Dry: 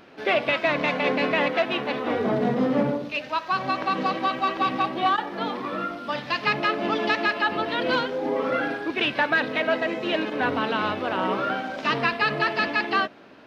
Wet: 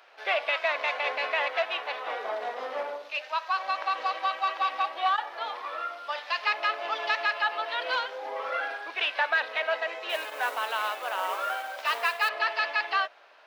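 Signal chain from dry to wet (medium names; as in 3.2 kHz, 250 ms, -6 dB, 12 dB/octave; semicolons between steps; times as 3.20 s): 10.09–12.29 s: modulation noise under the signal 21 dB; high-pass 620 Hz 24 dB/octave; trim -3 dB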